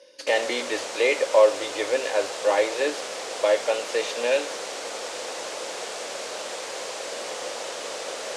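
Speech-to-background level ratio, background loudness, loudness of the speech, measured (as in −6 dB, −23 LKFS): 8.5 dB, −32.5 LKFS, −24.0 LKFS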